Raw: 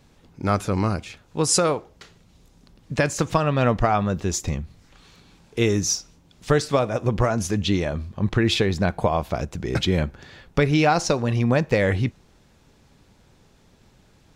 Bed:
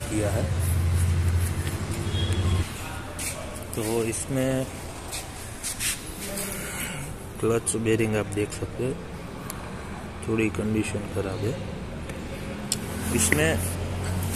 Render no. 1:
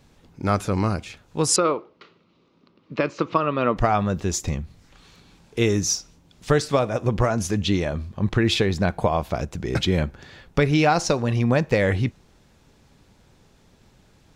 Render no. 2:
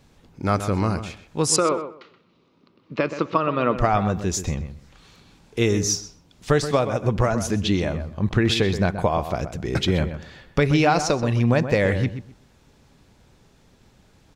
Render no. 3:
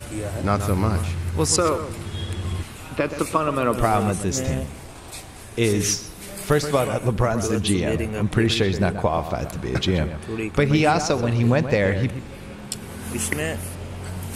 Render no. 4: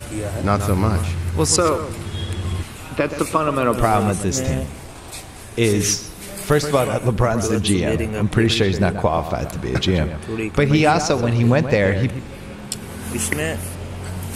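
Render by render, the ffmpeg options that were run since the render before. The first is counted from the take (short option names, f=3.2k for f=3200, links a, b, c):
-filter_complex "[0:a]asettb=1/sr,asplit=3[a][b][c];[a]atrim=end=1.564[d];[b]atrim=start=1.56:end=3.77,asetpts=PTS-STARTPTS,afade=t=in:d=0.004:c=qsin,afade=t=out:st=2.206:d=0.004:c=qsin,highpass=230,equalizer=f=340:t=q:w=4:g=4,equalizer=f=760:t=q:w=4:g=-8,equalizer=f=1.2k:t=q:w=4:g=6,equalizer=f=1.7k:t=q:w=4:g=-8,equalizer=f=3.4k:t=q:w=4:g=-4,lowpass=f=3.9k:w=0.5412,lowpass=f=3.9k:w=1.3066[e];[c]atrim=start=3.766[f];[d][e]acrossfade=d=0.004:c1=hsin:c2=qsin[g];[g][f]acrossfade=d=0.004:c1=qsin:c2=hsin"
-filter_complex "[0:a]asplit=2[a][b];[b]adelay=127,lowpass=f=2.5k:p=1,volume=-10dB,asplit=2[c][d];[d]adelay=127,lowpass=f=2.5k:p=1,volume=0.2,asplit=2[e][f];[f]adelay=127,lowpass=f=2.5k:p=1,volume=0.2[g];[a][c][e][g]amix=inputs=4:normalize=0"
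-filter_complex "[1:a]volume=-3.5dB[a];[0:a][a]amix=inputs=2:normalize=0"
-af "volume=3dB,alimiter=limit=-3dB:level=0:latency=1"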